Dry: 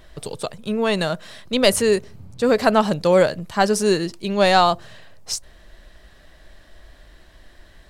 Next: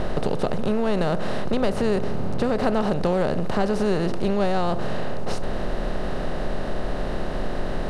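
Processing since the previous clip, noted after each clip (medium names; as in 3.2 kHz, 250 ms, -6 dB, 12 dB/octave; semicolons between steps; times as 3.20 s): spectral levelling over time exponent 0.4; RIAA curve playback; compression, threshold -10 dBFS, peak gain reduction 9 dB; trim -7.5 dB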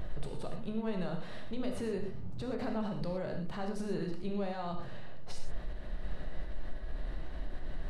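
expander on every frequency bin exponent 2; peak limiter -25 dBFS, peak gain reduction 10.5 dB; on a send at -2.5 dB: reverberation, pre-delay 14 ms; on the sum: trim -5 dB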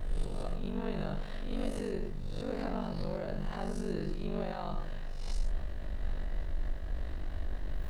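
reverse spectral sustain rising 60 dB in 0.68 s; ring modulator 24 Hz; added noise brown -50 dBFS; trim +1 dB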